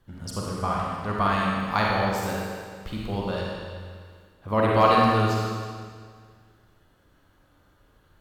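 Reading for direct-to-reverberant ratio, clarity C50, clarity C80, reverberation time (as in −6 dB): −4.0 dB, −2.5 dB, 0.0 dB, 1.9 s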